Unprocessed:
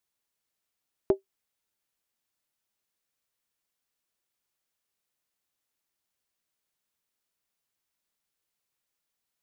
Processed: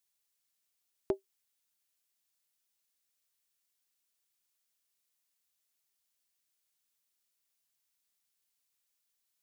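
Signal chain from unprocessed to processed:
high-shelf EQ 2,300 Hz +11.5 dB
level −7.5 dB

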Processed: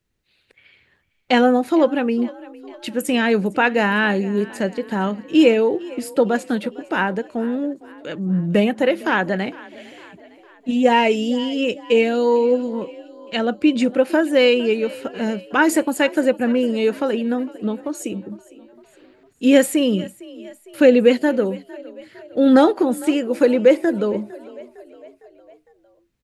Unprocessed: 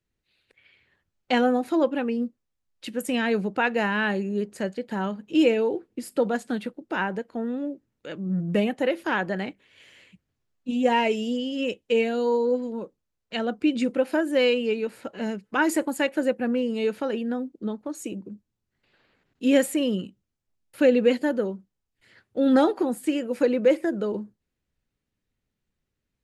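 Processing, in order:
echo with shifted repeats 456 ms, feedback 55%, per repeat +33 Hz, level −20.5 dB
level +6.5 dB

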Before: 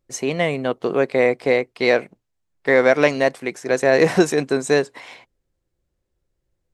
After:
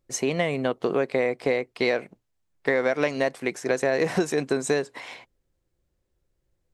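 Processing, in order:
downward compressor 5 to 1, threshold −20 dBFS, peak gain reduction 10 dB

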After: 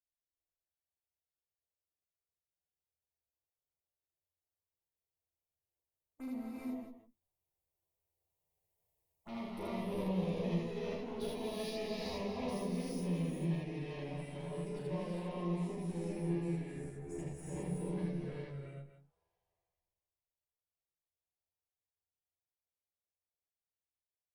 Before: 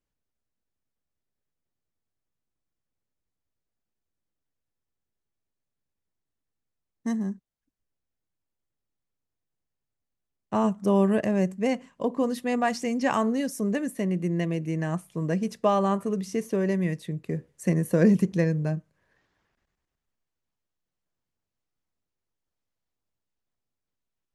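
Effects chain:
source passing by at 0:09.58, 42 m/s, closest 20 metres
parametric band 4,600 Hz −14.5 dB 2.4 octaves
harmonic and percussive parts rebalanced harmonic −9 dB
tilt shelving filter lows −4.5 dB, about 730 Hz
reversed playback
downward compressor 5 to 1, threshold −53 dBFS, peak gain reduction 21.5 dB
reversed playback
tube saturation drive 56 dB, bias 0.55
phaser swept by the level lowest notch 240 Hz, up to 1,500 Hz, full sweep at −61 dBFS
double-tracking delay 12 ms −3.5 dB
on a send: loudspeakers that aren't time-aligned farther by 12 metres −3 dB, 27 metres 0 dB, 83 metres −9 dB
on the sum: reverb whose tail is shaped and stops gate 430 ms rising, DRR −4 dB
level +14 dB

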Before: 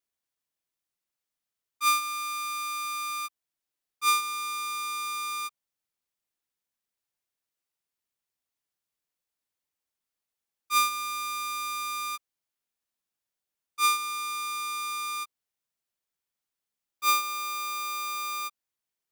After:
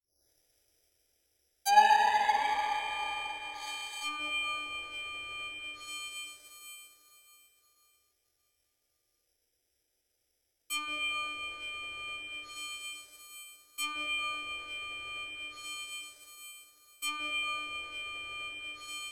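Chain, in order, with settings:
turntable start at the beginning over 2.53 s
low-shelf EQ 410 Hz +8.5 dB
phaser with its sweep stopped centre 450 Hz, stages 4
convolution reverb RT60 4.2 s, pre-delay 7 ms, DRR −8.5 dB
in parallel at +1 dB: downward compressor, threshold −38 dBFS, peak gain reduction 19.5 dB
on the sum: bad sample-rate conversion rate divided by 8×, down filtered, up zero stuff
treble cut that deepens with the level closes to 1,800 Hz, closed at −20 dBFS
dynamic equaliser 700 Hz, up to +7 dB, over −47 dBFS, Q 1.4
level −3.5 dB

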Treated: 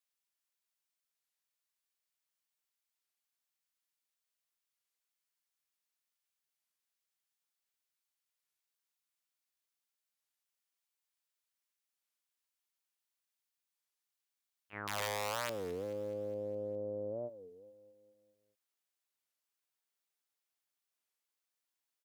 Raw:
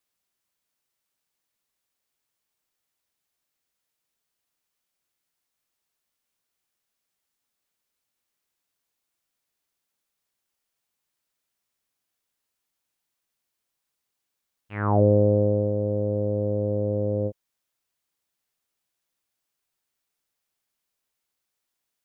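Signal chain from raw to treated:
wrap-around overflow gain 13 dB
brickwall limiter −20 dBFS, peak gain reduction 7 dB
high-pass filter 1,200 Hz 6 dB per octave, from 0:14.73 470 Hz
repeating echo 206 ms, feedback 58%, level −15.5 dB
wow of a warped record 33 1/3 rpm, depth 250 cents
level −7.5 dB

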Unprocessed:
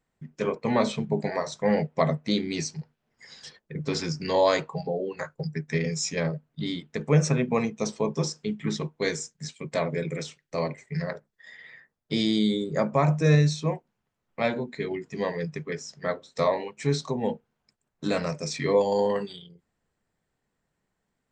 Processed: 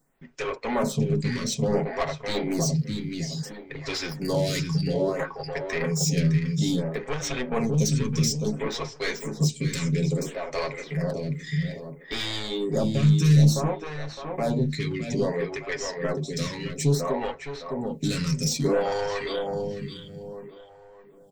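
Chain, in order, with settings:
high-shelf EQ 2,200 Hz +11 dB
in parallel at −1 dB: downward compressor, threshold −32 dBFS, peak gain reduction 16.5 dB
on the sum: soft clipping −21.5 dBFS, distortion −8 dB
low-shelf EQ 240 Hz +9 dB
comb filter 7.3 ms, depth 39%
feedback echo with a low-pass in the loop 611 ms, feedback 38%, low-pass 2,400 Hz, level −4.5 dB
phaser with staggered stages 0.59 Hz

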